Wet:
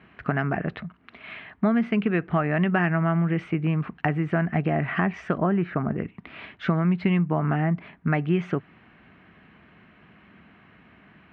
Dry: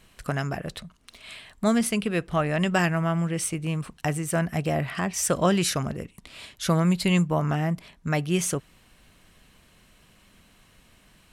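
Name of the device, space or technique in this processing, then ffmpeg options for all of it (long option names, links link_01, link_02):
bass amplifier: -filter_complex "[0:a]acompressor=threshold=-26dB:ratio=5,highpass=frequency=81:width=0.5412,highpass=frequency=81:width=1.3066,equalizer=frequency=89:width_type=q:width=4:gain=-8,equalizer=frequency=130:width_type=q:width=4:gain=-5,equalizer=frequency=530:width_type=q:width=4:gain=-9,equalizer=frequency=1000:width_type=q:width=4:gain=-4,lowpass=frequency=2200:width=0.5412,lowpass=frequency=2200:width=1.3066,asplit=3[link_01][link_02][link_03];[link_01]afade=type=out:start_time=5.37:duration=0.02[link_04];[link_02]lowpass=1600,afade=type=in:start_time=5.37:duration=0.02,afade=type=out:start_time=5.95:duration=0.02[link_05];[link_03]afade=type=in:start_time=5.95:duration=0.02[link_06];[link_04][link_05][link_06]amix=inputs=3:normalize=0,volume=8.5dB"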